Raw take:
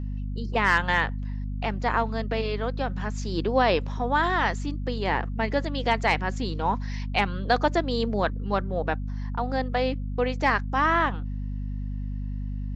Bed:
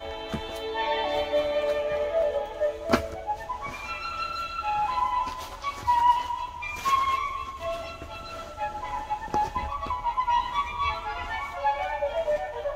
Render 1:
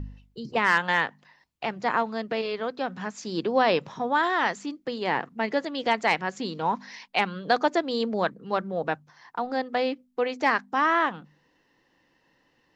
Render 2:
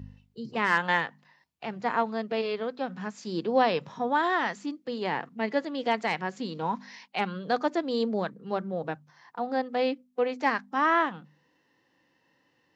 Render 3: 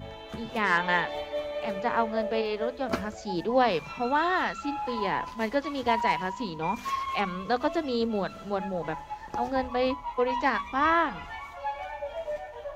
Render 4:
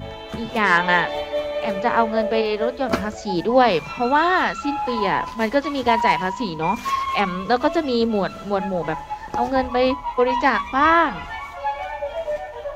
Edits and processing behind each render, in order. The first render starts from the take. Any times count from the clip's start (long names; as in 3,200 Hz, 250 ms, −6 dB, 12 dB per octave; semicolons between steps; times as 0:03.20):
hum removal 50 Hz, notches 5
high-pass filter 78 Hz; harmonic and percussive parts rebalanced percussive −8 dB
mix in bed −7.5 dB
level +8 dB; brickwall limiter −3 dBFS, peak gain reduction 1 dB